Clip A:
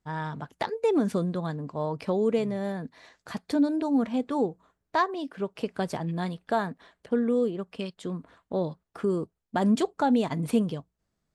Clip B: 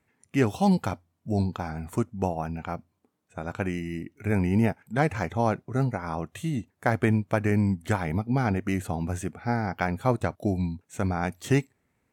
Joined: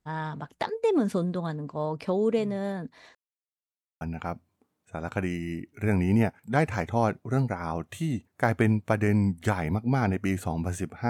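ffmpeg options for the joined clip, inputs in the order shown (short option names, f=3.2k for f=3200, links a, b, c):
-filter_complex "[0:a]apad=whole_dur=11.09,atrim=end=11.09,asplit=2[a][b];[a]atrim=end=3.15,asetpts=PTS-STARTPTS,afade=t=out:st=3.146:d=0.004:c=hsin[c];[b]atrim=start=3.15:end=4.01,asetpts=PTS-STARTPTS,volume=0[d];[1:a]atrim=start=2.44:end=9.52,asetpts=PTS-STARTPTS,afade=t=in:d=0.004:c=hsin[e];[c][d][e]concat=n=3:v=0:a=1"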